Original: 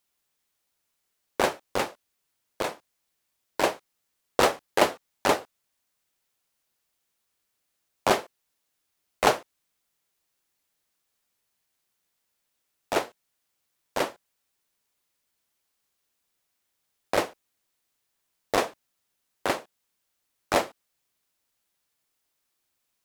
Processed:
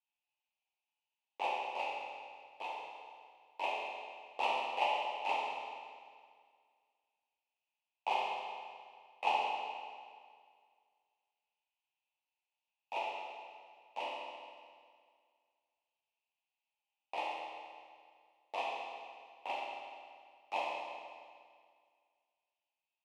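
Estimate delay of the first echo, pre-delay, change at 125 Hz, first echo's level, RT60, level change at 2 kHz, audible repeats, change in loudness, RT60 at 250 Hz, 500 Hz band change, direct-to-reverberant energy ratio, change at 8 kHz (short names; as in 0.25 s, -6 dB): none, 12 ms, under -30 dB, none, 2.0 s, -9.5 dB, none, -11.5 dB, 2.0 s, -15.0 dB, -5.5 dB, under -20 dB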